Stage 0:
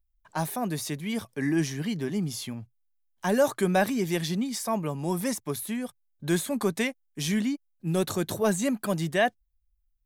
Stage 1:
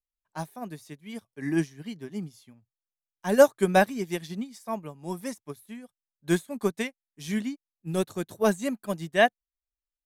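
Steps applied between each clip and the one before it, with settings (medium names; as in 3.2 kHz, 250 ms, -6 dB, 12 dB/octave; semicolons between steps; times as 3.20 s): upward expansion 2.5:1, over -39 dBFS; trim +7.5 dB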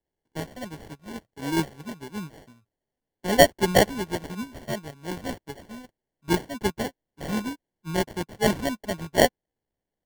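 treble shelf 2.3 kHz +9.5 dB; sample-and-hold 35×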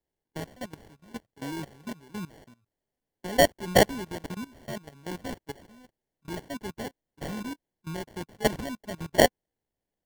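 level held to a coarse grid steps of 18 dB; trim +2 dB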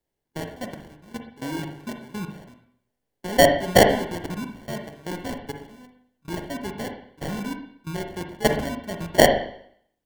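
reverberation RT60 0.65 s, pre-delay 40 ms, DRR 4.5 dB; trim +4 dB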